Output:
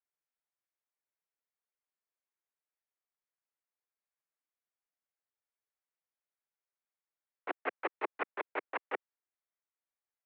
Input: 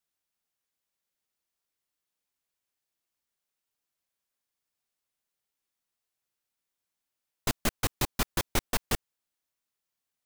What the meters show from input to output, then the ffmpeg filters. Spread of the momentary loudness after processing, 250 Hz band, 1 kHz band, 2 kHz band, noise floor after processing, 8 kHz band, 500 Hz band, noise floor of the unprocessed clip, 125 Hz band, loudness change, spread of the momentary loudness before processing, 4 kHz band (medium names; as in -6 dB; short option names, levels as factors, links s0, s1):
5 LU, -12.5 dB, -2.0 dB, -3.0 dB, under -85 dBFS, under -40 dB, -2.5 dB, under -85 dBFS, under -40 dB, -8.0 dB, 4 LU, -20.5 dB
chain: -af "agate=range=0.2:threshold=0.0562:ratio=16:detection=peak,alimiter=limit=0.0794:level=0:latency=1,highpass=f=320:t=q:w=0.5412,highpass=f=320:t=q:w=1.307,lowpass=f=2300:t=q:w=0.5176,lowpass=f=2300:t=q:w=0.7071,lowpass=f=2300:t=q:w=1.932,afreqshift=51,volume=2.24"